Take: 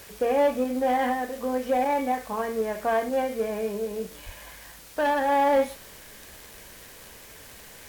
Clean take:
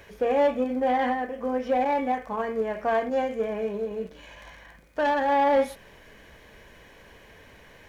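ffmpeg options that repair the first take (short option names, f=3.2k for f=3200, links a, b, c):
-filter_complex "[0:a]adeclick=t=4,asplit=3[a][b][c];[a]afade=t=out:st=4.25:d=0.02[d];[b]highpass=f=140:w=0.5412,highpass=f=140:w=1.3066,afade=t=in:st=4.25:d=0.02,afade=t=out:st=4.37:d=0.02[e];[c]afade=t=in:st=4.37:d=0.02[f];[d][e][f]amix=inputs=3:normalize=0,afwtdn=0.004"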